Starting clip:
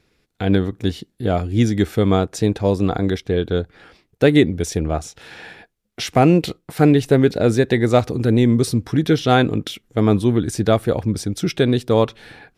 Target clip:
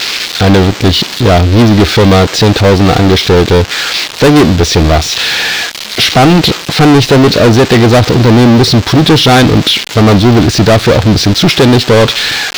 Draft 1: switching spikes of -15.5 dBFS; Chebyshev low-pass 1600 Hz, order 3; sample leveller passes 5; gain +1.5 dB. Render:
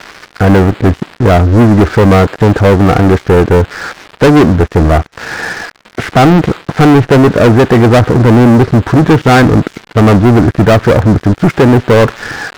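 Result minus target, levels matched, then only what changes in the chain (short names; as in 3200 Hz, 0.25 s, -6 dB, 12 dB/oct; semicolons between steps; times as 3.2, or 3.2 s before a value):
4000 Hz band -13.5 dB
change: Chebyshev low-pass 4300 Hz, order 3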